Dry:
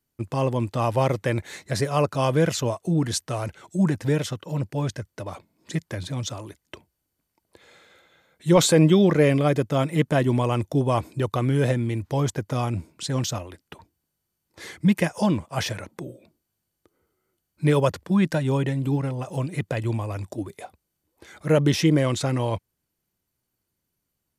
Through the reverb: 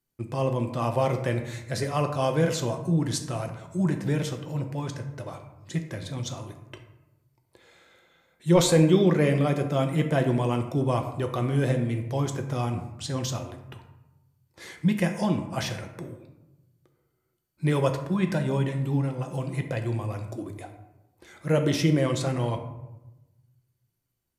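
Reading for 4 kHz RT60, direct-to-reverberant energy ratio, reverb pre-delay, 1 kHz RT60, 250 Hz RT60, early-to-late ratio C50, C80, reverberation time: 0.50 s, 4.5 dB, 5 ms, 1.0 s, 1.3 s, 8.5 dB, 11.0 dB, 1.0 s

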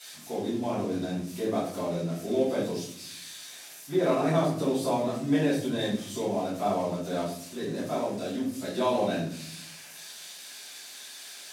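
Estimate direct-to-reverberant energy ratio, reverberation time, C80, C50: -10.0 dB, no single decay rate, 8.5 dB, 3.0 dB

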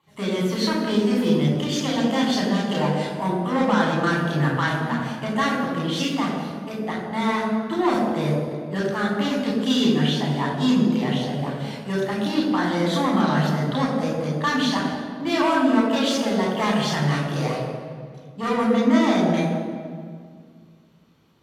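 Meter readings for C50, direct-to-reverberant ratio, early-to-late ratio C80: 1.5 dB, -3.5 dB, 3.0 dB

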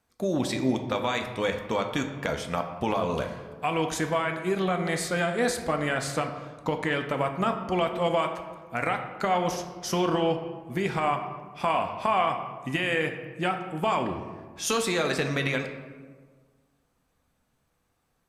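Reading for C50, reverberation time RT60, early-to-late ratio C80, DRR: 7.5 dB, 1.5 s, 9.5 dB, 4.5 dB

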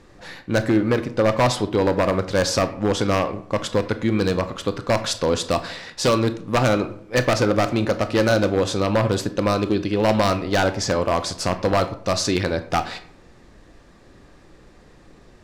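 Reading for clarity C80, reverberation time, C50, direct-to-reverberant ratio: 16.0 dB, 0.55 s, 13.5 dB, 10.0 dB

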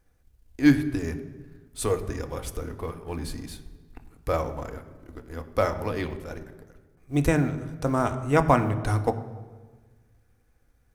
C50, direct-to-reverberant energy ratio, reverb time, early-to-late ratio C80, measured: 12.5 dB, 7.0 dB, 1.4 s, 13.5 dB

